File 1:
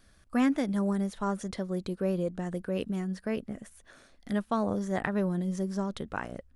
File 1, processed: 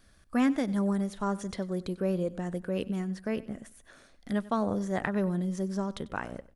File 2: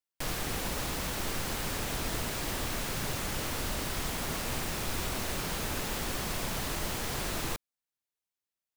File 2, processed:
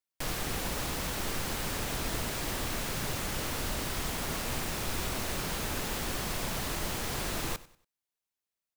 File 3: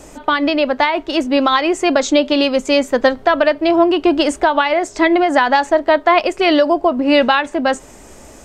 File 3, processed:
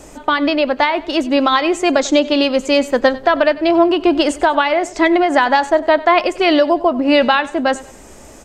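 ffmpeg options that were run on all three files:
-af "aecho=1:1:95|190|285:0.112|0.037|0.0122"

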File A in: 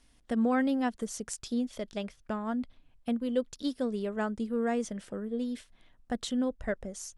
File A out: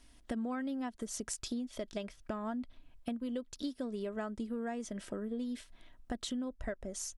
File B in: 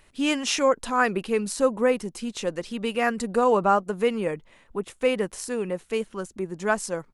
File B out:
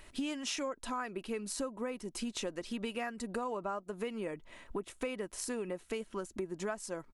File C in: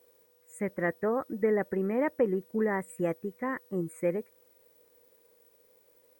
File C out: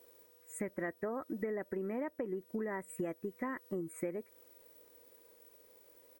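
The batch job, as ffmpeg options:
-af "aecho=1:1:3.1:0.31,acompressor=threshold=-37dB:ratio=8,volume=2dB"

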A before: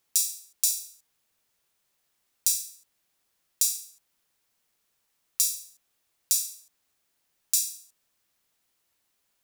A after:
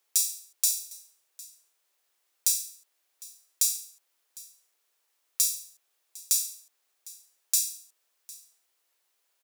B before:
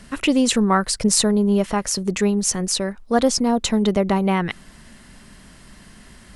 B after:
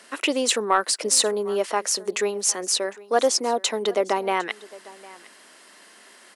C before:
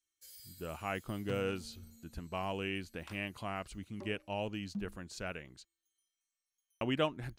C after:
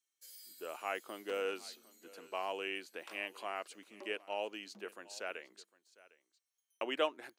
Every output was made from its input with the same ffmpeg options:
-filter_complex "[0:a]highpass=f=360:w=0.5412,highpass=f=360:w=1.3066,asoftclip=type=tanh:threshold=-4.5dB,asplit=2[a][b];[b]aecho=0:1:755:0.0891[c];[a][c]amix=inputs=2:normalize=0"

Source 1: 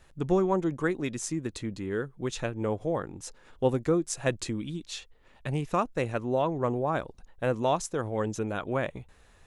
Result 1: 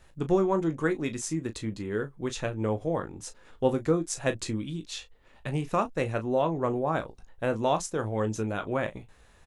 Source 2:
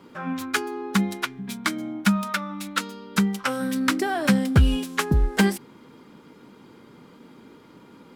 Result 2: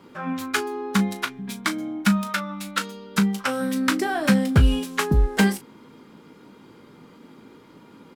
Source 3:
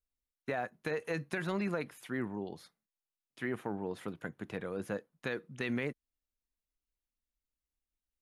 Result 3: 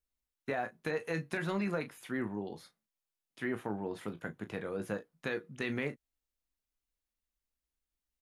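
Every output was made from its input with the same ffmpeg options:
-af "aecho=1:1:19|36:0.299|0.237"

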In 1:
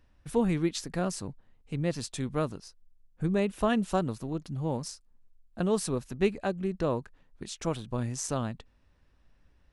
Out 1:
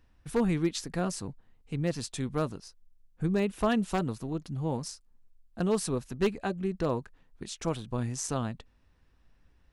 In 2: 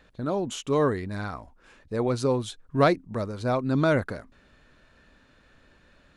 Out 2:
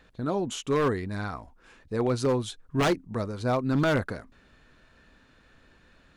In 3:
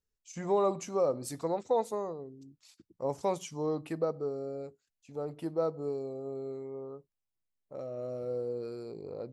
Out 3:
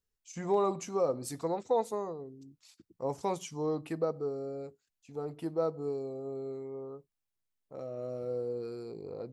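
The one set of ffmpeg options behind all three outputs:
-af "bandreject=f=580:w=13,aeval=exprs='0.133*(abs(mod(val(0)/0.133+3,4)-2)-1)':c=same"

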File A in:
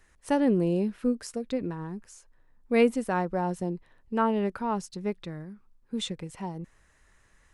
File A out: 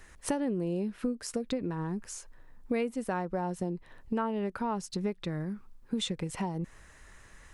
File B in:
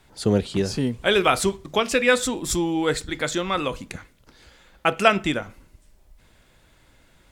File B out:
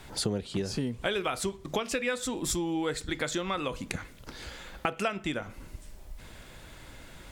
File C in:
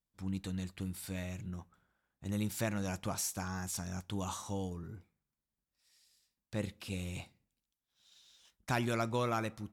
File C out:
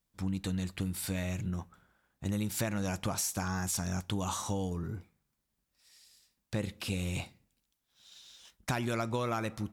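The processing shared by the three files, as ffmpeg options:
-af "acompressor=threshold=-38dB:ratio=6,volume=8.5dB"

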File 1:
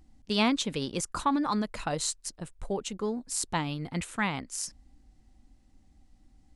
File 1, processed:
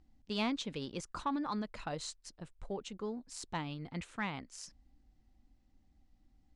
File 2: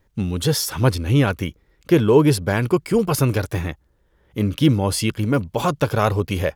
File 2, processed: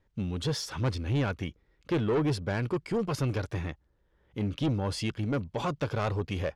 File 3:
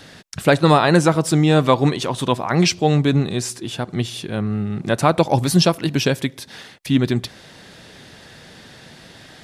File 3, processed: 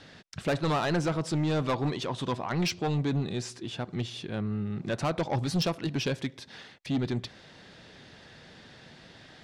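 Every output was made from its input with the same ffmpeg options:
-af "lowpass=5.6k,asoftclip=type=tanh:threshold=-14.5dB,volume=-8dB"

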